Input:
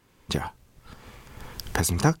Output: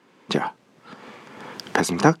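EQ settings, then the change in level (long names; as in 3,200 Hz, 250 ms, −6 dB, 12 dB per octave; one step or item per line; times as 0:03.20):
high-pass filter 190 Hz 24 dB per octave
high-frequency loss of the air 51 metres
high-shelf EQ 4,000 Hz −7 dB
+8.0 dB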